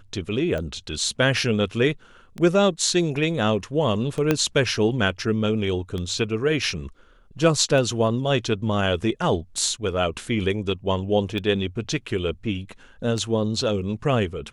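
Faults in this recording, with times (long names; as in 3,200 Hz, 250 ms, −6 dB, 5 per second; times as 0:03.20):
scratch tick 33 1/3 rpm −18 dBFS
0:04.31: click −6 dBFS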